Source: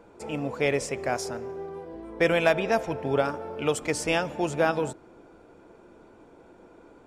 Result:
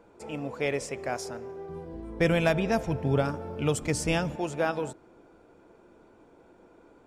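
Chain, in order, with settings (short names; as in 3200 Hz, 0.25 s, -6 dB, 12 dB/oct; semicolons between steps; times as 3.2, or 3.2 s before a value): 1.69–4.36 tone controls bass +13 dB, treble +4 dB; gain -4 dB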